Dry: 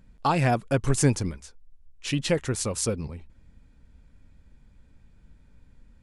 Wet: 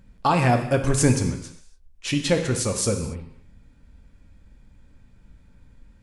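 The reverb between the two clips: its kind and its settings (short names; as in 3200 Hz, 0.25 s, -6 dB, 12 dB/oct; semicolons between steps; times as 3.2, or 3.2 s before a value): non-linear reverb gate 0.31 s falling, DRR 4.5 dB; gain +2.5 dB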